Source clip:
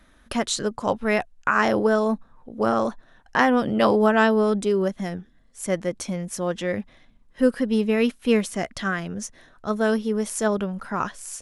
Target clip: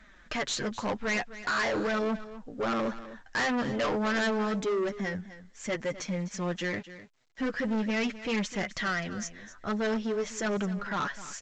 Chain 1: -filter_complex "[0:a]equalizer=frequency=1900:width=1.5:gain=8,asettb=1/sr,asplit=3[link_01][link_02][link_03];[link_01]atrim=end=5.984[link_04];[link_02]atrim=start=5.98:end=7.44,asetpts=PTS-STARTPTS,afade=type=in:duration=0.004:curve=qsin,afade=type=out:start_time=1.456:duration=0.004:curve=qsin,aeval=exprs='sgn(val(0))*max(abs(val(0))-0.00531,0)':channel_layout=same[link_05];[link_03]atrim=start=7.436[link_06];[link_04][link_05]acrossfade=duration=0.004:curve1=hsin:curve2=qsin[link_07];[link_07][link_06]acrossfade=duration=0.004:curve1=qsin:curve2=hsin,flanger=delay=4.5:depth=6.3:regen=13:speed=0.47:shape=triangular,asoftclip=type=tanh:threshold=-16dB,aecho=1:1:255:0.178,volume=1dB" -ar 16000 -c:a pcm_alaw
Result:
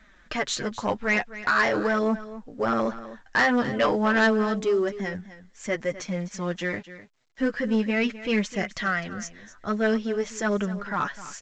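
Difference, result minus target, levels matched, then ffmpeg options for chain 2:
soft clipping: distortion −8 dB
-filter_complex "[0:a]equalizer=frequency=1900:width=1.5:gain=8,asettb=1/sr,asplit=3[link_01][link_02][link_03];[link_01]atrim=end=5.984[link_04];[link_02]atrim=start=5.98:end=7.44,asetpts=PTS-STARTPTS,afade=type=in:duration=0.004:curve=qsin,afade=type=out:start_time=1.456:duration=0.004:curve=qsin,aeval=exprs='sgn(val(0))*max(abs(val(0))-0.00531,0)':channel_layout=same[link_05];[link_03]atrim=start=7.436[link_06];[link_04][link_05]acrossfade=duration=0.004:curve1=hsin:curve2=qsin[link_07];[link_07][link_06]acrossfade=duration=0.004:curve1=qsin:curve2=hsin,flanger=delay=4.5:depth=6.3:regen=13:speed=0.47:shape=triangular,asoftclip=type=tanh:threshold=-27dB,aecho=1:1:255:0.178,volume=1dB" -ar 16000 -c:a pcm_alaw

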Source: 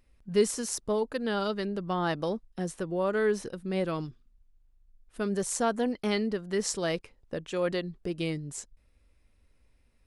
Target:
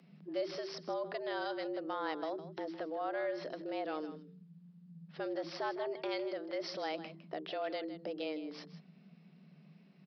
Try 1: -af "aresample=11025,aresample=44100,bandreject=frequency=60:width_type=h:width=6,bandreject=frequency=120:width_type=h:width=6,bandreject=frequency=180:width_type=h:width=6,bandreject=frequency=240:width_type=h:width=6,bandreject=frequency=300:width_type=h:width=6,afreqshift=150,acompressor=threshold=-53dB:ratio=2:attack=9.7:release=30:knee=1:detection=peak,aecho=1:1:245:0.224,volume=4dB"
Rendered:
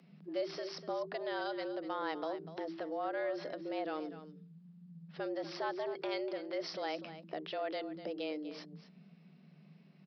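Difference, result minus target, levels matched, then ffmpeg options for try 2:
echo 87 ms late
-af "aresample=11025,aresample=44100,bandreject=frequency=60:width_type=h:width=6,bandreject=frequency=120:width_type=h:width=6,bandreject=frequency=180:width_type=h:width=6,bandreject=frequency=240:width_type=h:width=6,bandreject=frequency=300:width_type=h:width=6,afreqshift=150,acompressor=threshold=-53dB:ratio=2:attack=9.7:release=30:knee=1:detection=peak,aecho=1:1:158:0.224,volume=4dB"

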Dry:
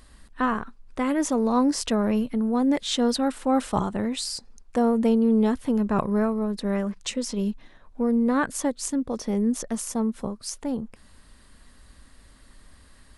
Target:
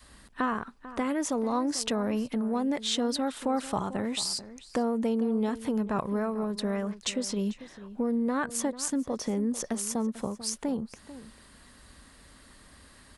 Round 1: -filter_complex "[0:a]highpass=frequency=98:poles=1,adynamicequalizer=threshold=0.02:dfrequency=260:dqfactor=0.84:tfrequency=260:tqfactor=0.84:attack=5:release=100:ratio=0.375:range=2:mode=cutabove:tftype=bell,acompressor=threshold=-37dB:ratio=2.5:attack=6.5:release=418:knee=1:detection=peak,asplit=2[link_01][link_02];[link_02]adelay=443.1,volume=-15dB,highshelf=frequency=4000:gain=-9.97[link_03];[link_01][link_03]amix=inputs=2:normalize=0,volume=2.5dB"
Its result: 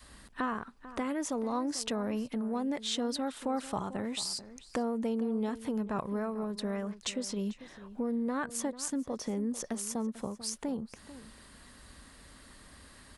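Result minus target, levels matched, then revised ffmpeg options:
downward compressor: peak gain reduction +4.5 dB
-filter_complex "[0:a]highpass=frequency=98:poles=1,adynamicequalizer=threshold=0.02:dfrequency=260:dqfactor=0.84:tfrequency=260:tqfactor=0.84:attack=5:release=100:ratio=0.375:range=2:mode=cutabove:tftype=bell,acompressor=threshold=-29.5dB:ratio=2.5:attack=6.5:release=418:knee=1:detection=peak,asplit=2[link_01][link_02];[link_02]adelay=443.1,volume=-15dB,highshelf=frequency=4000:gain=-9.97[link_03];[link_01][link_03]amix=inputs=2:normalize=0,volume=2.5dB"

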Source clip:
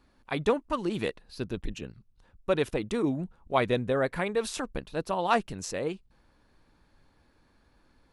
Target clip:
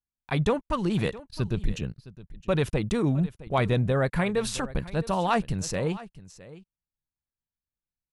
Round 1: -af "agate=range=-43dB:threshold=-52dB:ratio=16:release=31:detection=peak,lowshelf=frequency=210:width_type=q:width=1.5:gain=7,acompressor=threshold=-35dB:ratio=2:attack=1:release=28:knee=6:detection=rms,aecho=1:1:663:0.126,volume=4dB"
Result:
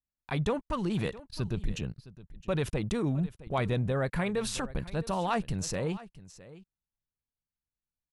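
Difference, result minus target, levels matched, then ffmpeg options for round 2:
downward compressor: peak gain reduction +5.5 dB
-af "agate=range=-43dB:threshold=-52dB:ratio=16:release=31:detection=peak,lowshelf=frequency=210:width_type=q:width=1.5:gain=7,acompressor=threshold=-24dB:ratio=2:attack=1:release=28:knee=6:detection=rms,aecho=1:1:663:0.126,volume=4dB"

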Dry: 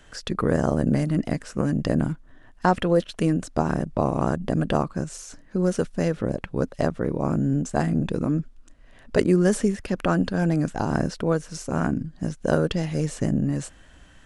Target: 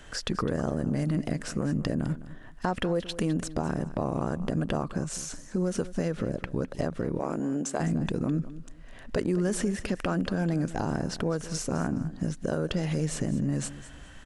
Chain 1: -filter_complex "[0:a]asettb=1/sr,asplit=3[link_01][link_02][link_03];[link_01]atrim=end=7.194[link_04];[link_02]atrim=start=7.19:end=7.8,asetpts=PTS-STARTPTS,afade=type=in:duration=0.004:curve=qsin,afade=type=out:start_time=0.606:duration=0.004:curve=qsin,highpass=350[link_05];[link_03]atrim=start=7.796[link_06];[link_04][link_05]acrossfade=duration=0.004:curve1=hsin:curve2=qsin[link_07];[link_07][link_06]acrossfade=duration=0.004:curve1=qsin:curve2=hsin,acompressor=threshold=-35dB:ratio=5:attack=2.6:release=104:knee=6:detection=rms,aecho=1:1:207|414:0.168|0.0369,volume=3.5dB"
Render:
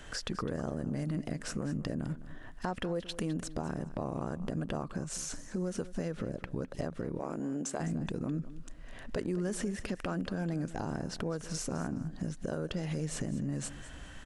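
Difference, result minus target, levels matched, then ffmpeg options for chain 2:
downward compressor: peak gain reduction +7 dB
-filter_complex "[0:a]asettb=1/sr,asplit=3[link_01][link_02][link_03];[link_01]atrim=end=7.194[link_04];[link_02]atrim=start=7.19:end=7.8,asetpts=PTS-STARTPTS,afade=type=in:duration=0.004:curve=qsin,afade=type=out:start_time=0.606:duration=0.004:curve=qsin,highpass=350[link_05];[link_03]atrim=start=7.796[link_06];[link_04][link_05]acrossfade=duration=0.004:curve1=hsin:curve2=qsin[link_07];[link_07][link_06]acrossfade=duration=0.004:curve1=qsin:curve2=hsin,acompressor=threshold=-26.5dB:ratio=5:attack=2.6:release=104:knee=6:detection=rms,aecho=1:1:207|414:0.168|0.0369,volume=3.5dB"

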